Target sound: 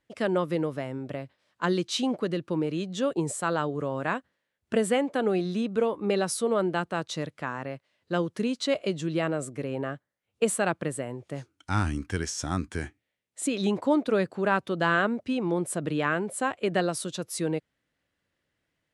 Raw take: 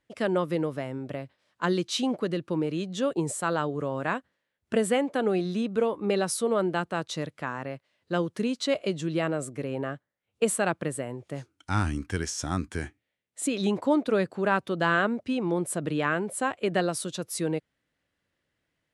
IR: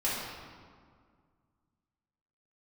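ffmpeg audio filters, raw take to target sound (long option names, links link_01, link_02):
-af "lowpass=12000"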